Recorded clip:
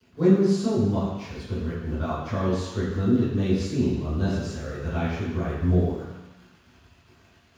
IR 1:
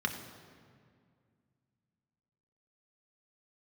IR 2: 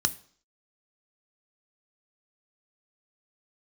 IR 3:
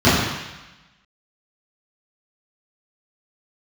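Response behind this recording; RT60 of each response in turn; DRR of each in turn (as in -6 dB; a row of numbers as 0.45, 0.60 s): 3; 2.1, 0.55, 1.0 s; 3.0, 11.0, -14.0 dB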